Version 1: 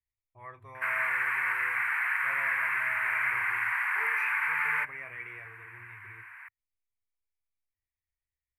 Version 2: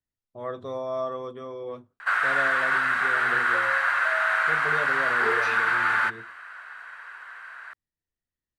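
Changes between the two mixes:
background: entry +1.25 s; master: remove EQ curve 100 Hz 0 dB, 210 Hz -28 dB, 320 Hz -17 dB, 560 Hz -23 dB, 960 Hz -4 dB, 1400 Hz -13 dB, 2300 Hz +7 dB, 3600 Hz -26 dB, 7100 Hz -14 dB, 12000 Hz +7 dB

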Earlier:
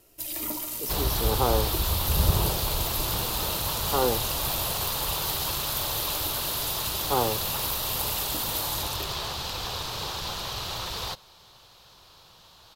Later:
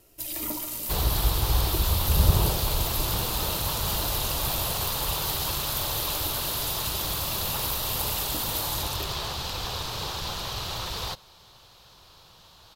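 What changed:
speech: muted; master: add low shelf 180 Hz +3.5 dB

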